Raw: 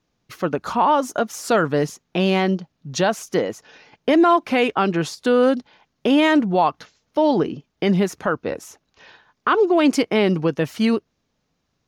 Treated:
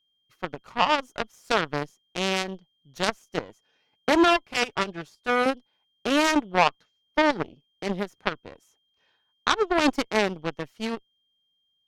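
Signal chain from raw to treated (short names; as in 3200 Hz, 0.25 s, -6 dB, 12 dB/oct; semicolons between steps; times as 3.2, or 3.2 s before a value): whine 3200 Hz -48 dBFS; added harmonics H 3 -7 dB, 5 -22 dB, 8 -42 dB, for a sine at -7 dBFS; 4.1–5.46 notch comb 260 Hz; gain +2.5 dB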